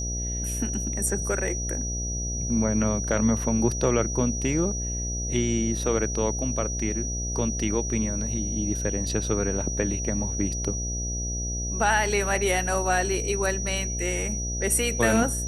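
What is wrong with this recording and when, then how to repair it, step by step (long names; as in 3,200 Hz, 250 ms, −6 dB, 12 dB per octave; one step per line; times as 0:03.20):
mains buzz 60 Hz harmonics 12 −31 dBFS
whistle 5,800 Hz −31 dBFS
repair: hum removal 60 Hz, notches 12
notch filter 5,800 Hz, Q 30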